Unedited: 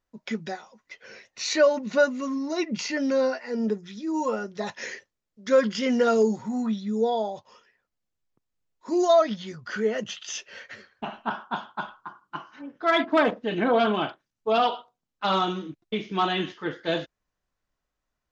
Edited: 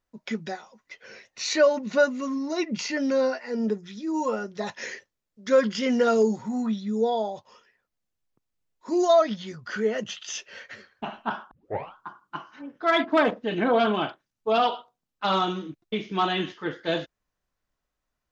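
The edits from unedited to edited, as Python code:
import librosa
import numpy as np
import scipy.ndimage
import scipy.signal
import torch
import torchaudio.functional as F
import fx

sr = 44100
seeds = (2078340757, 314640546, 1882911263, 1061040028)

y = fx.edit(x, sr, fx.tape_start(start_s=11.51, length_s=0.44), tone=tone)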